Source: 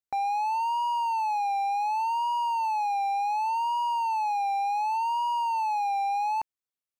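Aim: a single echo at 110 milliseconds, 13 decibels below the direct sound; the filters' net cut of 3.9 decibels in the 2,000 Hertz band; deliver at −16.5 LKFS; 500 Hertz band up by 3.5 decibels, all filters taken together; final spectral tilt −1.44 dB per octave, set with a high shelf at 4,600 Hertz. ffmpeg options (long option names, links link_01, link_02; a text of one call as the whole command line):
ffmpeg -i in.wav -af "equalizer=frequency=500:width_type=o:gain=6,equalizer=frequency=2000:width_type=o:gain=-4.5,highshelf=frequency=4600:gain=-4.5,aecho=1:1:110:0.224,volume=10dB" out.wav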